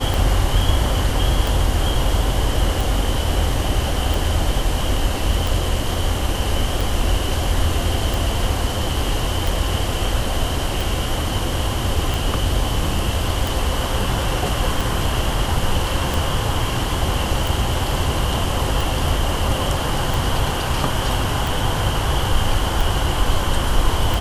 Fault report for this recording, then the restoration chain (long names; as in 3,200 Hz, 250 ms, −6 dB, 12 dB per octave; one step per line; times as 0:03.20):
scratch tick 45 rpm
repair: click removal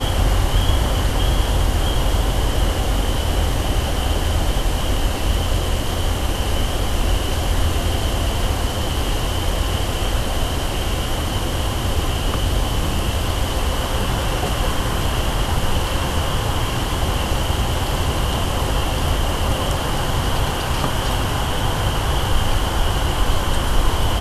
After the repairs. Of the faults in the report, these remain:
none of them is left